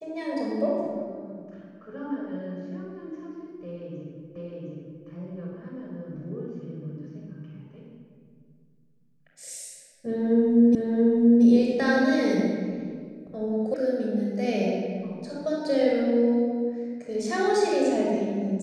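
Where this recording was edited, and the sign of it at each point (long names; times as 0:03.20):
0:04.36: the same again, the last 0.71 s
0:10.75: the same again, the last 0.68 s
0:13.74: cut off before it has died away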